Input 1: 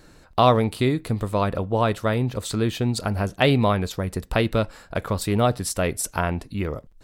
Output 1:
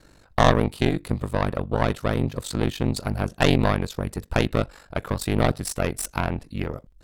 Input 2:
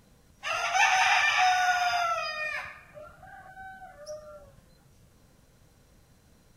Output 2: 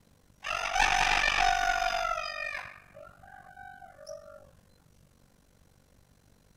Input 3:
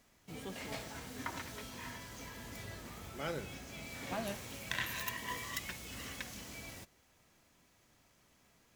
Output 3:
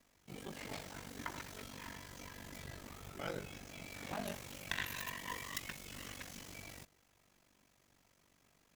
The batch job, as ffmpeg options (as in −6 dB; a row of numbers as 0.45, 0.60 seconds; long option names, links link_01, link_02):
-af "aeval=exprs='0.668*(cos(1*acos(clip(val(0)/0.668,-1,1)))-cos(1*PI/2))+0.188*(cos(4*acos(clip(val(0)/0.668,-1,1)))-cos(4*PI/2))':channel_layout=same,aeval=exprs='val(0)*sin(2*PI*24*n/s)':channel_layout=same"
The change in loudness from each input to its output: −1.5, −2.5, −3.0 LU